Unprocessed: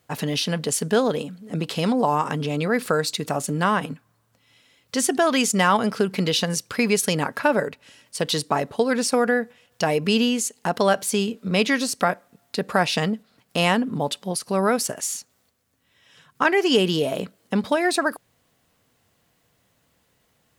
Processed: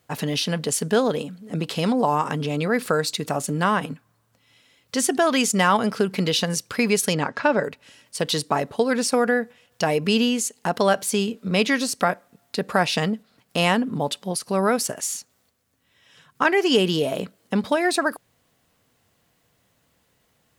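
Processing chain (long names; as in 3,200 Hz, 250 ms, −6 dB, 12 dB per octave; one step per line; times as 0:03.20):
0:07.14–0:07.64: low-pass filter 6,800 Hz 24 dB per octave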